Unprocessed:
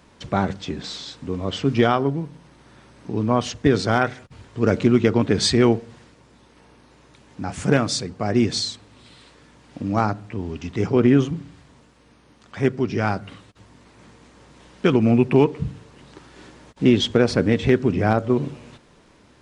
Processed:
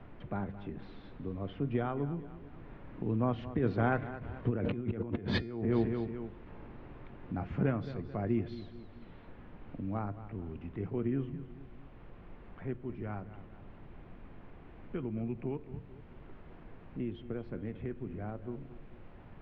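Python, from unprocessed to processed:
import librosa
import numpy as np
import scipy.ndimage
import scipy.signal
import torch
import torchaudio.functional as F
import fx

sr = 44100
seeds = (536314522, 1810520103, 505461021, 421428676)

p1 = fx.doppler_pass(x, sr, speed_mps=8, closest_m=1.5, pass_at_s=5.23)
p2 = fx.tilt_eq(p1, sr, slope=-2.0)
p3 = fx.dmg_noise_colour(p2, sr, seeds[0], colour='brown', level_db=-63.0)
p4 = scipy.signal.sosfilt(scipy.signal.butter(4, 2800.0, 'lowpass', fs=sr, output='sos'), p3)
p5 = p4 + fx.echo_feedback(p4, sr, ms=219, feedback_pct=36, wet_db=-16, dry=0)
p6 = fx.over_compress(p5, sr, threshold_db=-33.0, ratio=-1.0)
p7 = fx.comb_fb(p6, sr, f0_hz=350.0, decay_s=0.52, harmonics='all', damping=0.0, mix_pct=50)
p8 = fx.band_squash(p7, sr, depth_pct=40)
y = p8 * librosa.db_to_amplitude(7.5)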